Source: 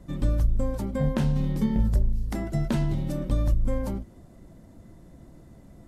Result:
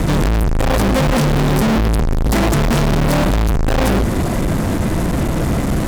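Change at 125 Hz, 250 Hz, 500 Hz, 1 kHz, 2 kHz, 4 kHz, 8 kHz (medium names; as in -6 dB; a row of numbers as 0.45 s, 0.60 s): +11.0 dB, +12.5 dB, +15.5 dB, +21.0 dB, +22.0 dB, +21.5 dB, +22.0 dB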